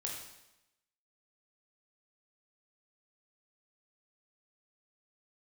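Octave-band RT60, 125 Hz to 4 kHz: 0.90 s, 0.95 s, 0.90 s, 0.90 s, 0.90 s, 0.90 s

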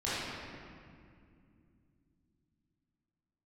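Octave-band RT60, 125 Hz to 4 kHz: 4.4 s, 4.2 s, 2.6 s, 2.1 s, 2.0 s, 1.5 s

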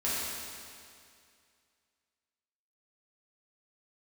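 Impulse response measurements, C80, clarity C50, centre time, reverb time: -1.0 dB, -3.0 dB, 152 ms, 2.3 s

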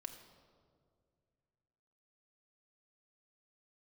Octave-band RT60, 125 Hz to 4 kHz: 3.0 s, 2.6 s, 2.4 s, 1.8 s, 1.2 s, 1.1 s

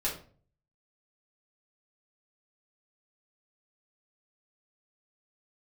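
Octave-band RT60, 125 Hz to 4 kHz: 0.75 s, 0.55 s, 0.50 s, 0.40 s, 0.35 s, 0.30 s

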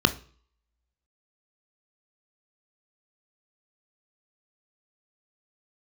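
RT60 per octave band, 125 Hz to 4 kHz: 0.55 s, 0.45 s, 0.45 s, 0.50 s, 0.45 s, 0.45 s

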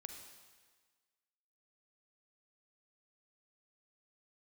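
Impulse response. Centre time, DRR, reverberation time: 39 ms, 4.5 dB, 1.5 s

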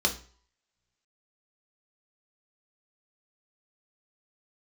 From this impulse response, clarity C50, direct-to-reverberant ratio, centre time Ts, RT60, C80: 12.5 dB, 2.0 dB, 13 ms, no single decay rate, 18.0 dB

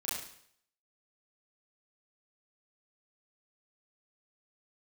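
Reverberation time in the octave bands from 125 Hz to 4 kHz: 0.60 s, 0.60 s, 0.65 s, 0.65 s, 0.65 s, 0.65 s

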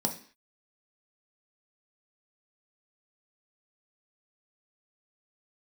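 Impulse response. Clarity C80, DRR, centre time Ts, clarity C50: 16.0 dB, 2.5 dB, 13 ms, 11.0 dB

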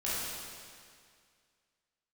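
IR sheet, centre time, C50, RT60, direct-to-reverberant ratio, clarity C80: 148 ms, -4.0 dB, 2.1 s, -10.0 dB, -1.0 dB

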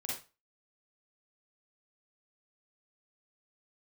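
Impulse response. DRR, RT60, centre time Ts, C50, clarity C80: -5.0 dB, 0.30 s, 47 ms, 0.0 dB, 9.5 dB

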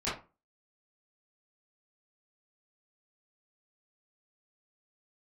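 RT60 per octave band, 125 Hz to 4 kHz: 0.35 s, 0.35 s, 0.30 s, 0.30 s, 0.25 s, 0.20 s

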